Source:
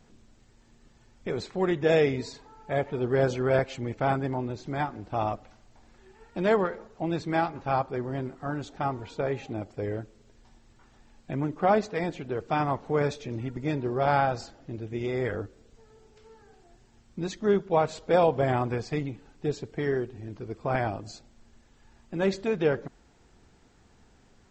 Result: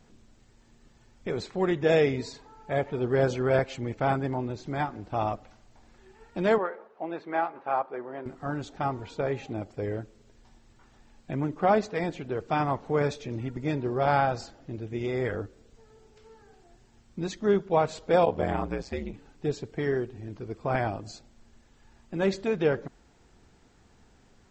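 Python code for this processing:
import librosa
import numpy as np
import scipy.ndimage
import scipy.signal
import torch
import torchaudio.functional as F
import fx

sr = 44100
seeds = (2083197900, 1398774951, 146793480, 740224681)

y = fx.bandpass_edges(x, sr, low_hz=440.0, high_hz=2000.0, at=(6.58, 8.26))
y = fx.ring_mod(y, sr, carrier_hz=fx.line((18.25, 34.0), (19.12, 87.0)), at=(18.25, 19.12), fade=0.02)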